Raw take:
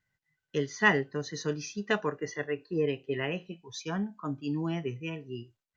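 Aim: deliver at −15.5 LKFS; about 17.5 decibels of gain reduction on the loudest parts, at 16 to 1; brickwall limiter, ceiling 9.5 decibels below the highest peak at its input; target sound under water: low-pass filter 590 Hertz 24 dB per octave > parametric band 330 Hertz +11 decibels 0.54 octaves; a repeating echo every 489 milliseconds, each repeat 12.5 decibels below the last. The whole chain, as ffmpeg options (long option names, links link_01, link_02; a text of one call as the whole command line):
ffmpeg -i in.wav -af "acompressor=threshold=-35dB:ratio=16,alimiter=level_in=8.5dB:limit=-24dB:level=0:latency=1,volume=-8.5dB,lowpass=frequency=590:width=0.5412,lowpass=frequency=590:width=1.3066,equalizer=frequency=330:width_type=o:width=0.54:gain=11,aecho=1:1:489|978|1467:0.237|0.0569|0.0137,volume=23dB" out.wav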